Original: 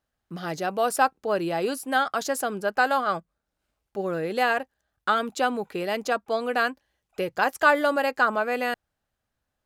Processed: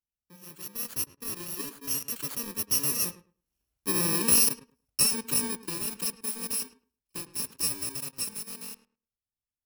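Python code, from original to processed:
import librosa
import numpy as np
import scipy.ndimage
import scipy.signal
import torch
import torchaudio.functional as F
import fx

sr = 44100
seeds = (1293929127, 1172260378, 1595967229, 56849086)

p1 = fx.bit_reversed(x, sr, seeds[0], block=64)
p2 = fx.doppler_pass(p1, sr, speed_mps=9, closest_m=6.8, pass_at_s=4.2)
p3 = fx.quant_dither(p2, sr, seeds[1], bits=6, dither='none')
p4 = p2 + F.gain(torch.from_numpy(p3), -4.0).numpy()
p5 = fx.echo_filtered(p4, sr, ms=106, feedback_pct=17, hz=1900.0, wet_db=-13.5)
y = F.gain(torch.from_numpy(p5), -1.5).numpy()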